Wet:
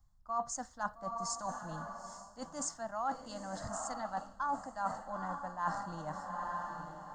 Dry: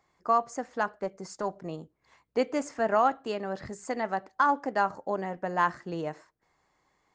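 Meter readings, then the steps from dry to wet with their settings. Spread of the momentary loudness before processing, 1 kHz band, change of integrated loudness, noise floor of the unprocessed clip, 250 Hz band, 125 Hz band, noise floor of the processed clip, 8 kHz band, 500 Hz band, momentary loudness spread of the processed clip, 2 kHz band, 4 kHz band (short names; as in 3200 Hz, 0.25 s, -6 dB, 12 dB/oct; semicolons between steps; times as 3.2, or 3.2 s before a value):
12 LU, -8.0 dB, -9.5 dB, -74 dBFS, -10.5 dB, -5.0 dB, -59 dBFS, +6.0 dB, -13.5 dB, 6 LU, -11.0 dB, -5.0 dB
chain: high shelf 4800 Hz +11 dB; diffused feedback echo 0.906 s, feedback 41%, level -10 dB; reverse; compressor 8:1, threshold -33 dBFS, peak gain reduction 15 dB; reverse; added noise brown -62 dBFS; fixed phaser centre 1000 Hz, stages 4; three-band expander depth 40%; gain +1 dB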